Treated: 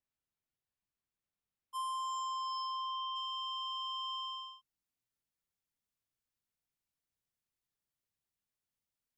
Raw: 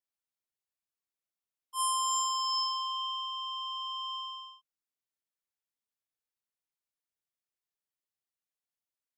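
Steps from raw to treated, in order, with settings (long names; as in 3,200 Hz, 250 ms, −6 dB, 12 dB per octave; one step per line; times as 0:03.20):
bass and treble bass +11 dB, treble −7 dB, from 0:01.76 treble −14 dB, from 0:03.15 treble 0 dB
downward compressor, threshold −37 dBFS, peak gain reduction 6.5 dB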